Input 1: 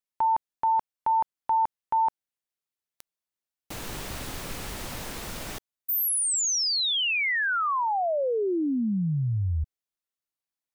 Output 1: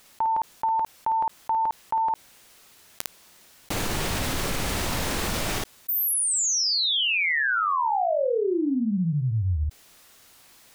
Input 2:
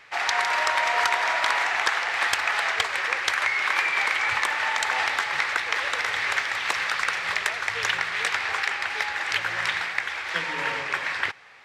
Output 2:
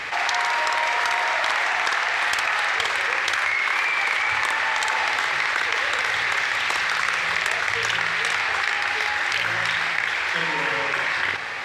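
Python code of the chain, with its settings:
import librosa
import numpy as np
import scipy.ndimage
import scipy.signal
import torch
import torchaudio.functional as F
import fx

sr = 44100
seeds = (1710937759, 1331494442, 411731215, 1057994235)

p1 = fx.high_shelf(x, sr, hz=11000.0, db=-4.5)
p2 = p1 + fx.room_early_taps(p1, sr, ms=(11, 54), db=(-16.5, -4.0), dry=0)
p3 = fx.env_flatten(p2, sr, amount_pct=70)
y = F.gain(torch.from_numpy(p3), -2.0).numpy()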